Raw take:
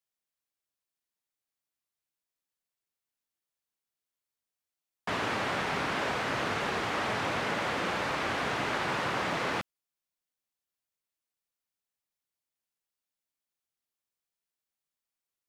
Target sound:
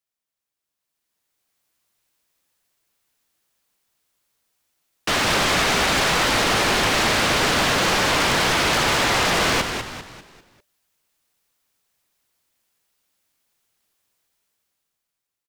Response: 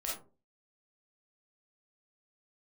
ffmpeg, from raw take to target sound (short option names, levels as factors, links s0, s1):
-filter_complex "[0:a]dynaudnorm=f=260:g=9:m=5.31,aeval=exprs='0.126*(abs(mod(val(0)/0.126+3,4)-2)-1)':c=same,asplit=6[s0][s1][s2][s3][s4][s5];[s1]adelay=198,afreqshift=-120,volume=0.447[s6];[s2]adelay=396,afreqshift=-240,volume=0.188[s7];[s3]adelay=594,afreqshift=-360,volume=0.0785[s8];[s4]adelay=792,afreqshift=-480,volume=0.0331[s9];[s5]adelay=990,afreqshift=-600,volume=0.014[s10];[s0][s6][s7][s8][s9][s10]amix=inputs=6:normalize=0,volume=1.33"